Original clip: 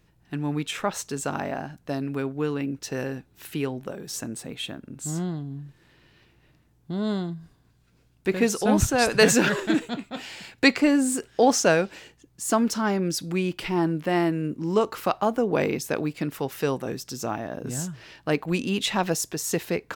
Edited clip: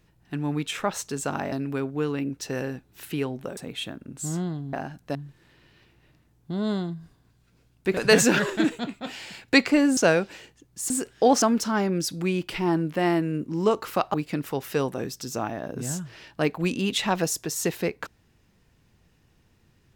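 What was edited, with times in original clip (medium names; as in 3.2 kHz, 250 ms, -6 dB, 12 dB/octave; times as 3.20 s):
1.52–1.94 s: move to 5.55 s
3.99–4.39 s: delete
8.37–9.07 s: delete
11.07–11.59 s: move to 12.52 s
15.24–16.02 s: delete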